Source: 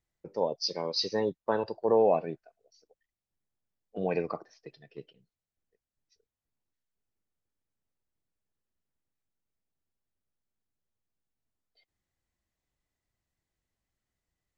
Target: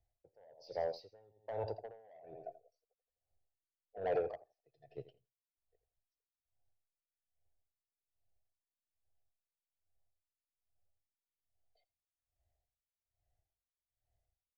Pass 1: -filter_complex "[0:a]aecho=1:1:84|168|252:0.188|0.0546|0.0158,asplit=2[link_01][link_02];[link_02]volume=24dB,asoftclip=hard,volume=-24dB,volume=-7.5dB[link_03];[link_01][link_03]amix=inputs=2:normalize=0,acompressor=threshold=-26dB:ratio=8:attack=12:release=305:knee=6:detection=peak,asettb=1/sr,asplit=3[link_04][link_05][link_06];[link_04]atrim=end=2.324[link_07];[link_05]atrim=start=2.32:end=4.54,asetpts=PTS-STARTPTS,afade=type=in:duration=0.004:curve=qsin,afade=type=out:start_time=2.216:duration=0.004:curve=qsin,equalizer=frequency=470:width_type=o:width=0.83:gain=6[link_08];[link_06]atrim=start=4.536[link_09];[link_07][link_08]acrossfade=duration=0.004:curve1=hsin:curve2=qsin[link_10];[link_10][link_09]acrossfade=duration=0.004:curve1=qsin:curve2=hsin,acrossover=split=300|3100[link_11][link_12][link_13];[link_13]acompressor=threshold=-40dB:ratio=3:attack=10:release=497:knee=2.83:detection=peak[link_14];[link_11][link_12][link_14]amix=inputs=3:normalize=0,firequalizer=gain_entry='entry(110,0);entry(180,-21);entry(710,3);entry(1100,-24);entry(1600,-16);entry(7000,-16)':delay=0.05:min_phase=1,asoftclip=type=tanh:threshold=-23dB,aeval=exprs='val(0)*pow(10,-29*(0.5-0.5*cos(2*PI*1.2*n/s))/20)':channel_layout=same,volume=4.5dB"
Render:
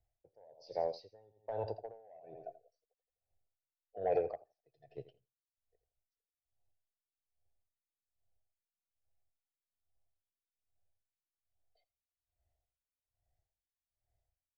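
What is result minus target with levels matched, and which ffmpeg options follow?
soft clipping: distortion −9 dB; gain into a clipping stage and back: distortion −5 dB
-filter_complex "[0:a]aecho=1:1:84|168|252:0.188|0.0546|0.0158,asplit=2[link_01][link_02];[link_02]volume=30.5dB,asoftclip=hard,volume=-30.5dB,volume=-7.5dB[link_03];[link_01][link_03]amix=inputs=2:normalize=0,acompressor=threshold=-26dB:ratio=8:attack=12:release=305:knee=6:detection=peak,asettb=1/sr,asplit=3[link_04][link_05][link_06];[link_04]atrim=end=2.324[link_07];[link_05]atrim=start=2.32:end=4.54,asetpts=PTS-STARTPTS,afade=type=in:duration=0.004:curve=qsin,afade=type=out:start_time=2.216:duration=0.004:curve=qsin,equalizer=frequency=470:width_type=o:width=0.83:gain=6[link_08];[link_06]atrim=start=4.536[link_09];[link_07][link_08]acrossfade=duration=0.004:curve1=hsin:curve2=qsin[link_10];[link_10][link_09]acrossfade=duration=0.004:curve1=qsin:curve2=hsin,acrossover=split=300|3100[link_11][link_12][link_13];[link_13]acompressor=threshold=-40dB:ratio=3:attack=10:release=497:knee=2.83:detection=peak[link_14];[link_11][link_12][link_14]amix=inputs=3:normalize=0,firequalizer=gain_entry='entry(110,0);entry(180,-21);entry(710,3);entry(1100,-24);entry(1600,-16);entry(7000,-16)':delay=0.05:min_phase=1,asoftclip=type=tanh:threshold=-30.5dB,aeval=exprs='val(0)*pow(10,-29*(0.5-0.5*cos(2*PI*1.2*n/s))/20)':channel_layout=same,volume=4.5dB"

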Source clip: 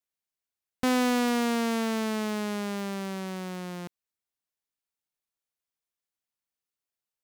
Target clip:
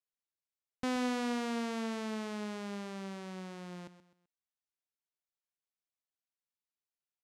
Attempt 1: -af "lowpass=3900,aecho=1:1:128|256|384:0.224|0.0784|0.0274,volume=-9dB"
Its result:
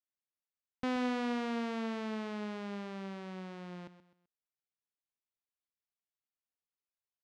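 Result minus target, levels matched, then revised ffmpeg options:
8,000 Hz band −9.0 dB
-af "lowpass=8300,aecho=1:1:128|256|384:0.224|0.0784|0.0274,volume=-9dB"

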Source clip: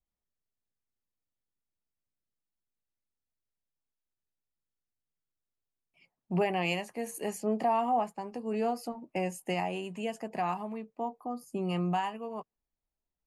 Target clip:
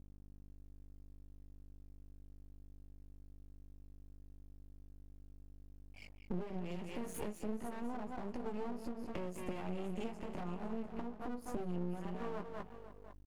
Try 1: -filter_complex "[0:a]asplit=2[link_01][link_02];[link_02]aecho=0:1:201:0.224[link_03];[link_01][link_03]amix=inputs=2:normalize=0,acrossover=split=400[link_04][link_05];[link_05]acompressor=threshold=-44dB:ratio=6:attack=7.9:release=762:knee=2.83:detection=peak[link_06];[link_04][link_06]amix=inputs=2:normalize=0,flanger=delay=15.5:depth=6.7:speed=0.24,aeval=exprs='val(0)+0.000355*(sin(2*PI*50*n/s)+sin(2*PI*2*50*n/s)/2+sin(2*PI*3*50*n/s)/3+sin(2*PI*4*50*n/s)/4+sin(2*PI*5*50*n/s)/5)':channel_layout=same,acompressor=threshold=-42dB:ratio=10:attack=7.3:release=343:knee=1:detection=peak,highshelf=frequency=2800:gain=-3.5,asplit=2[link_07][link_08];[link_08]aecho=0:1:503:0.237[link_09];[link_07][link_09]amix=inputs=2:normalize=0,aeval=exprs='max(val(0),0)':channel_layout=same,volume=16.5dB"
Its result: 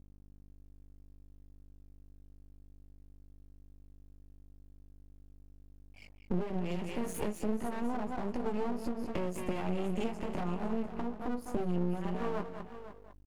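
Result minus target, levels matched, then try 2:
downward compressor: peak gain reduction −7 dB
-filter_complex "[0:a]asplit=2[link_01][link_02];[link_02]aecho=0:1:201:0.224[link_03];[link_01][link_03]amix=inputs=2:normalize=0,acrossover=split=400[link_04][link_05];[link_05]acompressor=threshold=-44dB:ratio=6:attack=7.9:release=762:knee=2.83:detection=peak[link_06];[link_04][link_06]amix=inputs=2:normalize=0,flanger=delay=15.5:depth=6.7:speed=0.24,aeval=exprs='val(0)+0.000355*(sin(2*PI*50*n/s)+sin(2*PI*2*50*n/s)/2+sin(2*PI*3*50*n/s)/3+sin(2*PI*4*50*n/s)/4+sin(2*PI*5*50*n/s)/5)':channel_layout=same,acompressor=threshold=-50dB:ratio=10:attack=7.3:release=343:knee=1:detection=peak,highshelf=frequency=2800:gain=-3.5,asplit=2[link_07][link_08];[link_08]aecho=0:1:503:0.237[link_09];[link_07][link_09]amix=inputs=2:normalize=0,aeval=exprs='max(val(0),0)':channel_layout=same,volume=16.5dB"

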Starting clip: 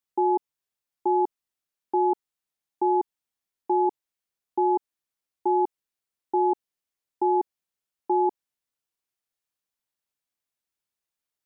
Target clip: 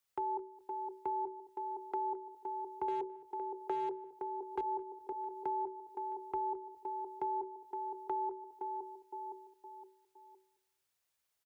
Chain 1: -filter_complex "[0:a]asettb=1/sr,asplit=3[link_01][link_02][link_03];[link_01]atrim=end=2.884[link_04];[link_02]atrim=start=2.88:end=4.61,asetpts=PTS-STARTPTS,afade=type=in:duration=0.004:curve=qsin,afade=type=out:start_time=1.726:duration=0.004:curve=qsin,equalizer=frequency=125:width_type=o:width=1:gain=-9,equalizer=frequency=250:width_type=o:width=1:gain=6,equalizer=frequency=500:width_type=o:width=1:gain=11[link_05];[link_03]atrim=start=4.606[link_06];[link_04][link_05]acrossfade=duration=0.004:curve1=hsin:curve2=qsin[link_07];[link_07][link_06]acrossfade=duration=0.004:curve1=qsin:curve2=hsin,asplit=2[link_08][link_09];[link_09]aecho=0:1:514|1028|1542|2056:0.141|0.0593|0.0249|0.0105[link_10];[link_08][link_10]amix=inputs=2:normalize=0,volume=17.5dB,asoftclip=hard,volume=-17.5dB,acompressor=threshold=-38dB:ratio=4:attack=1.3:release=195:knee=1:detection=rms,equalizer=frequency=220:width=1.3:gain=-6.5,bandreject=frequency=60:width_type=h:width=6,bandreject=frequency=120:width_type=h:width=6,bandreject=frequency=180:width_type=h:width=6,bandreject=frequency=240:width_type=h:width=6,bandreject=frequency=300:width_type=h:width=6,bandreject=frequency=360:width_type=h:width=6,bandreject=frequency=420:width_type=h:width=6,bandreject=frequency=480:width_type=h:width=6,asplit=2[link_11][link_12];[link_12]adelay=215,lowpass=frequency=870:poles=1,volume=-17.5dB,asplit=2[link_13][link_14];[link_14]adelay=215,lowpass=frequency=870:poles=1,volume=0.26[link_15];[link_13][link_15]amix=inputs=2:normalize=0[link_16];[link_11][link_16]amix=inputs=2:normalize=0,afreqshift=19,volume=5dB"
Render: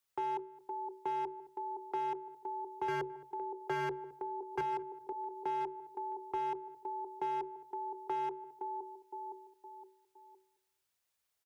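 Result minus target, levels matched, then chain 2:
gain into a clipping stage and back: distortion +19 dB
-filter_complex "[0:a]asettb=1/sr,asplit=3[link_01][link_02][link_03];[link_01]atrim=end=2.884[link_04];[link_02]atrim=start=2.88:end=4.61,asetpts=PTS-STARTPTS,afade=type=in:duration=0.004:curve=qsin,afade=type=out:start_time=1.726:duration=0.004:curve=qsin,equalizer=frequency=125:width_type=o:width=1:gain=-9,equalizer=frequency=250:width_type=o:width=1:gain=6,equalizer=frequency=500:width_type=o:width=1:gain=11[link_05];[link_03]atrim=start=4.606[link_06];[link_04][link_05]acrossfade=duration=0.004:curve1=hsin:curve2=qsin[link_07];[link_07][link_06]acrossfade=duration=0.004:curve1=qsin:curve2=hsin,asplit=2[link_08][link_09];[link_09]aecho=0:1:514|1028|1542|2056:0.141|0.0593|0.0249|0.0105[link_10];[link_08][link_10]amix=inputs=2:normalize=0,volume=10.5dB,asoftclip=hard,volume=-10.5dB,acompressor=threshold=-38dB:ratio=4:attack=1.3:release=195:knee=1:detection=rms,equalizer=frequency=220:width=1.3:gain=-6.5,bandreject=frequency=60:width_type=h:width=6,bandreject=frequency=120:width_type=h:width=6,bandreject=frequency=180:width_type=h:width=6,bandreject=frequency=240:width_type=h:width=6,bandreject=frequency=300:width_type=h:width=6,bandreject=frequency=360:width_type=h:width=6,bandreject=frequency=420:width_type=h:width=6,bandreject=frequency=480:width_type=h:width=6,asplit=2[link_11][link_12];[link_12]adelay=215,lowpass=frequency=870:poles=1,volume=-17.5dB,asplit=2[link_13][link_14];[link_14]adelay=215,lowpass=frequency=870:poles=1,volume=0.26[link_15];[link_13][link_15]amix=inputs=2:normalize=0[link_16];[link_11][link_16]amix=inputs=2:normalize=0,afreqshift=19,volume=5dB"

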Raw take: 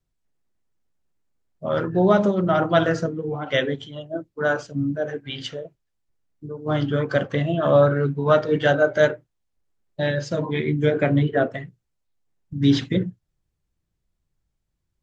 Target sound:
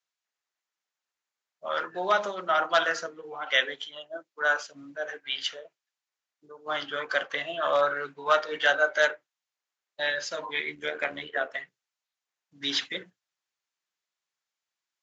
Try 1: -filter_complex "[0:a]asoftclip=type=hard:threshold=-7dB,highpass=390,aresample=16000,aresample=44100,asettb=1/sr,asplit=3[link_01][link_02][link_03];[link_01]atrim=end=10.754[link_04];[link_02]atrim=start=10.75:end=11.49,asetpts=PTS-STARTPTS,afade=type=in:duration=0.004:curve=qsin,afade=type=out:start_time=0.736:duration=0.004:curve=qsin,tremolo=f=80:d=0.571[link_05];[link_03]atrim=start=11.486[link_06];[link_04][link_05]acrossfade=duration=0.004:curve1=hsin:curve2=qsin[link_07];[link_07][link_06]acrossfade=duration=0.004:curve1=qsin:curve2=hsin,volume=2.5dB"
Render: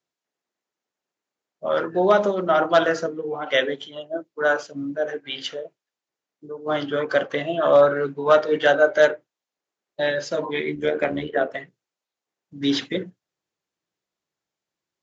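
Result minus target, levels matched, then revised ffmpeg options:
500 Hz band +4.5 dB
-filter_complex "[0:a]asoftclip=type=hard:threshold=-7dB,highpass=1100,aresample=16000,aresample=44100,asettb=1/sr,asplit=3[link_01][link_02][link_03];[link_01]atrim=end=10.754[link_04];[link_02]atrim=start=10.75:end=11.49,asetpts=PTS-STARTPTS,afade=type=in:duration=0.004:curve=qsin,afade=type=out:start_time=0.736:duration=0.004:curve=qsin,tremolo=f=80:d=0.571[link_05];[link_03]atrim=start=11.486[link_06];[link_04][link_05]acrossfade=duration=0.004:curve1=hsin:curve2=qsin[link_07];[link_07][link_06]acrossfade=duration=0.004:curve1=qsin:curve2=hsin,volume=2.5dB"

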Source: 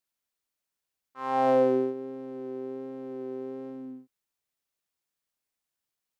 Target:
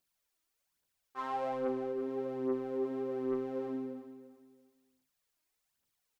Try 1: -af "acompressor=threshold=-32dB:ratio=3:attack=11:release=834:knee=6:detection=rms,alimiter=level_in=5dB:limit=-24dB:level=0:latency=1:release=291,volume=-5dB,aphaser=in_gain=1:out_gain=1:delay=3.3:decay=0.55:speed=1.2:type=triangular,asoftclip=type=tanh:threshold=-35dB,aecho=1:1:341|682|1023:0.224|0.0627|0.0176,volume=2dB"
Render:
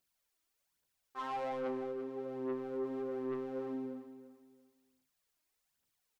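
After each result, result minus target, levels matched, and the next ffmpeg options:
downward compressor: peak gain reduction +11.5 dB; soft clipping: distortion +6 dB
-af "alimiter=level_in=5dB:limit=-24dB:level=0:latency=1:release=291,volume=-5dB,aphaser=in_gain=1:out_gain=1:delay=3.3:decay=0.55:speed=1.2:type=triangular,asoftclip=type=tanh:threshold=-35dB,aecho=1:1:341|682|1023:0.224|0.0627|0.0176,volume=2dB"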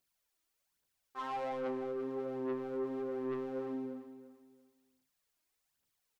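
soft clipping: distortion +7 dB
-af "alimiter=level_in=5dB:limit=-24dB:level=0:latency=1:release=291,volume=-5dB,aphaser=in_gain=1:out_gain=1:delay=3.3:decay=0.55:speed=1.2:type=triangular,asoftclip=type=tanh:threshold=-28dB,aecho=1:1:341|682|1023:0.224|0.0627|0.0176,volume=2dB"

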